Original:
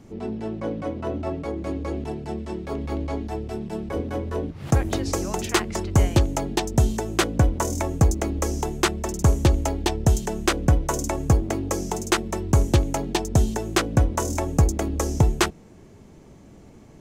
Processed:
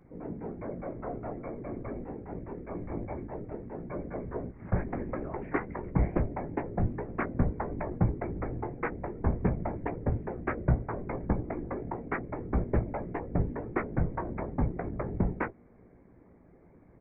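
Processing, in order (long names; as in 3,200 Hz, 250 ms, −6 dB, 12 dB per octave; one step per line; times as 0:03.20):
Chebyshev low-pass filter 2,200 Hz, order 6
random phases in short frames
double-tracking delay 17 ms −9 dB
level −9 dB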